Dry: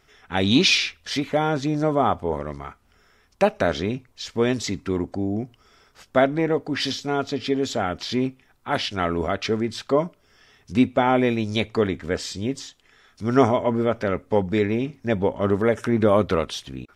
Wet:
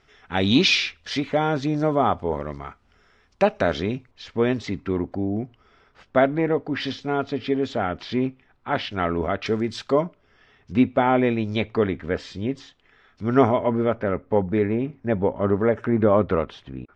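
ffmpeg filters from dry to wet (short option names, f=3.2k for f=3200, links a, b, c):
-af "asetnsamples=n=441:p=0,asendcmd='4.11 lowpass f 2900;9.46 lowpass f 6700;10.01 lowpass f 2900;13.95 lowpass f 1800',lowpass=5.1k"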